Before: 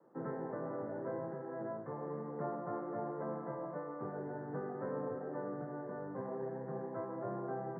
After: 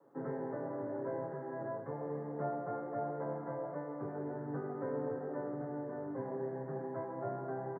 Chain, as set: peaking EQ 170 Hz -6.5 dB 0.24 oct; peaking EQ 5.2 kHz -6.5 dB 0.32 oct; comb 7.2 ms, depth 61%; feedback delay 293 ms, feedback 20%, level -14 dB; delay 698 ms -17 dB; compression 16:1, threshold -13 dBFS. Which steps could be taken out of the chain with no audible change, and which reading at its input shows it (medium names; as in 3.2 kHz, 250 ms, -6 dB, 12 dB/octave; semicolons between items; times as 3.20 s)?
peaking EQ 5.2 kHz: input has nothing above 1.8 kHz; compression, threshold -13 dBFS: peak at its input -26.0 dBFS